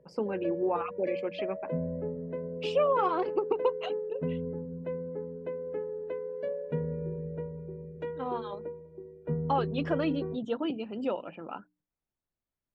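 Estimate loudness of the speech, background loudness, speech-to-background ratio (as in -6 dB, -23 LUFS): -32.5 LUFS, -36.5 LUFS, 4.0 dB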